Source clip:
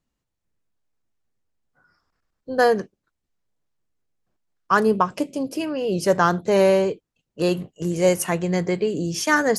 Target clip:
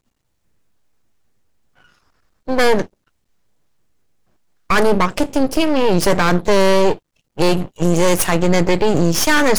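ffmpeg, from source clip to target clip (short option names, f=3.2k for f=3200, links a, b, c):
-af "apsyclip=18.5dB,aeval=exprs='max(val(0),0)':c=same,volume=-4.5dB"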